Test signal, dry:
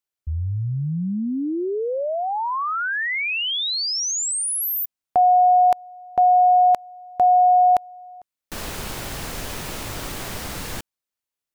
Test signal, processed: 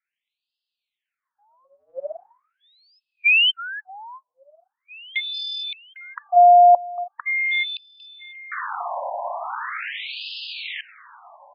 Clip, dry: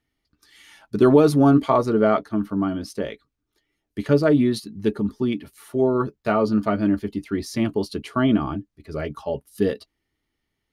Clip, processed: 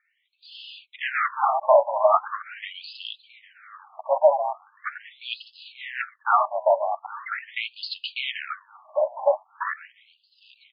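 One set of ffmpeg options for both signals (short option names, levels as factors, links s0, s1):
-filter_complex "[0:a]acrossover=split=2800[s0][s1];[s1]acompressor=threshold=0.0112:ratio=4:attack=1:release=60[s2];[s0][s2]amix=inputs=2:normalize=0,highpass=f=120:p=1,acontrast=62,afreqshift=-20,aresample=16000,asoftclip=type=hard:threshold=0.188,aresample=44100,aecho=1:1:802|1604|2406|3208:0.119|0.0535|0.0241|0.0108,afftfilt=real='re*between(b*sr/1024,730*pow(3700/730,0.5+0.5*sin(2*PI*0.41*pts/sr))/1.41,730*pow(3700/730,0.5+0.5*sin(2*PI*0.41*pts/sr))*1.41)':imag='im*between(b*sr/1024,730*pow(3700/730,0.5+0.5*sin(2*PI*0.41*pts/sr))/1.41,730*pow(3700/730,0.5+0.5*sin(2*PI*0.41*pts/sr))*1.41)':win_size=1024:overlap=0.75,volume=1.88"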